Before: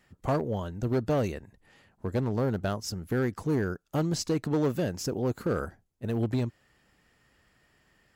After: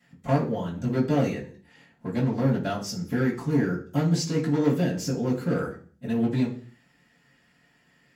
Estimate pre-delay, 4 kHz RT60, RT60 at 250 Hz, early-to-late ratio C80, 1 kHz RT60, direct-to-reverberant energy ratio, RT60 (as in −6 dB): 3 ms, 0.50 s, 0.60 s, 14.5 dB, 0.40 s, −11.5 dB, 0.45 s